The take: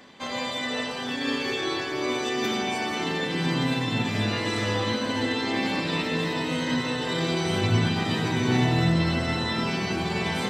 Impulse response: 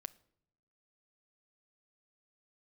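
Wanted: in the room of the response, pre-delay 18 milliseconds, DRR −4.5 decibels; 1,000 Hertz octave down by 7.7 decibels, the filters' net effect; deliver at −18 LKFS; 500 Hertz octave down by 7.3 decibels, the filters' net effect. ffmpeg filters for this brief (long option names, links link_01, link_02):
-filter_complex "[0:a]equalizer=frequency=500:width_type=o:gain=-8.5,equalizer=frequency=1000:width_type=o:gain=-7,asplit=2[link_01][link_02];[1:a]atrim=start_sample=2205,adelay=18[link_03];[link_02][link_03]afir=irnorm=-1:irlink=0,volume=9dB[link_04];[link_01][link_04]amix=inputs=2:normalize=0,volume=2.5dB"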